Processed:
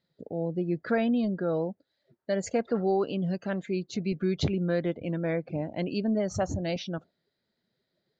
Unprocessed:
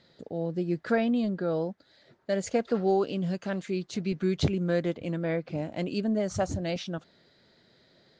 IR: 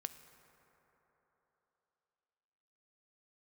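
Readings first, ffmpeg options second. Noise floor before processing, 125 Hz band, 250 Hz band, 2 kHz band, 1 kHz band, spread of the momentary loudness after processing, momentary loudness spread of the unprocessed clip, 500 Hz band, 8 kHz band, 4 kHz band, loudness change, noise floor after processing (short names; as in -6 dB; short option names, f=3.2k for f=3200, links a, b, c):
-64 dBFS, 0.0 dB, 0.0 dB, -0.5 dB, -0.5 dB, 7 LU, 8 LU, -0.5 dB, -0.5 dB, -1.0 dB, 0.0 dB, -81 dBFS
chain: -filter_complex "[0:a]afftdn=nr=19:nf=-47,asplit=2[a][b];[b]alimiter=limit=-20.5dB:level=0:latency=1,volume=-1dB[c];[a][c]amix=inputs=2:normalize=0,volume=-5dB"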